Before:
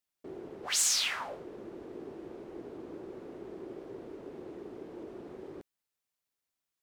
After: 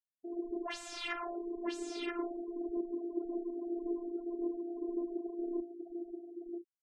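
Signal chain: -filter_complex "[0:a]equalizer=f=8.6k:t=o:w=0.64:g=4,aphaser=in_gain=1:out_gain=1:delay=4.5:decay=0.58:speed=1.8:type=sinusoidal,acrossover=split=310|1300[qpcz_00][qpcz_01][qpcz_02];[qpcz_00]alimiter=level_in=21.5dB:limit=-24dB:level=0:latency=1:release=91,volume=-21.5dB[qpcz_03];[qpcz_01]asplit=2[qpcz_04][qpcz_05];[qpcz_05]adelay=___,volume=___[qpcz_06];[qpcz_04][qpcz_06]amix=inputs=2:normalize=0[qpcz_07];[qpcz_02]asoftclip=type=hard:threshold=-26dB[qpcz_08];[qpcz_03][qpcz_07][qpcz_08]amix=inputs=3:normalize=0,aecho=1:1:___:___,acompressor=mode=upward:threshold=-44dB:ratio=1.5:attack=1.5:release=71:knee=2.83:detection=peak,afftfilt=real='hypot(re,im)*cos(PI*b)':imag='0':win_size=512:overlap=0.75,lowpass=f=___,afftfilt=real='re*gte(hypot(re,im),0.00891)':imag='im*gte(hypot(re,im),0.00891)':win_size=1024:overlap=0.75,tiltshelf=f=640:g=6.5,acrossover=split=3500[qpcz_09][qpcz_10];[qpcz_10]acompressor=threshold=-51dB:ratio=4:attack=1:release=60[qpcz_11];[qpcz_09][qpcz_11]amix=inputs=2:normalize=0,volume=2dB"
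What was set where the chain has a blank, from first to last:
39, -5.5dB, 980, 0.562, 11k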